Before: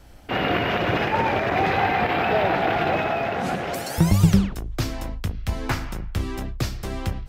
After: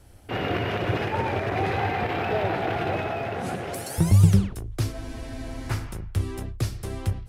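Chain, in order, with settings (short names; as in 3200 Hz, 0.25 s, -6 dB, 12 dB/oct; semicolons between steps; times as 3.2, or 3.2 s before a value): self-modulated delay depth 0.05 ms; fifteen-band EQ 100 Hz +11 dB, 400 Hz +5 dB, 10000 Hz +11 dB; spectral freeze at 4.94, 0.75 s; gain -6.5 dB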